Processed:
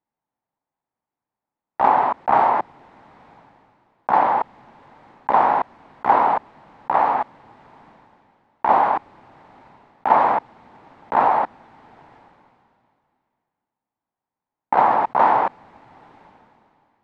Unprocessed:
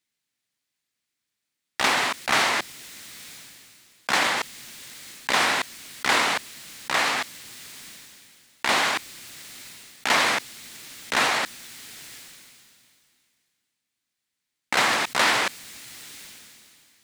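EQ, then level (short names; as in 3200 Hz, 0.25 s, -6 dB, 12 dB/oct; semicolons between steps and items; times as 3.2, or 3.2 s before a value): synth low-pass 870 Hz, resonance Q 4.2; +2.0 dB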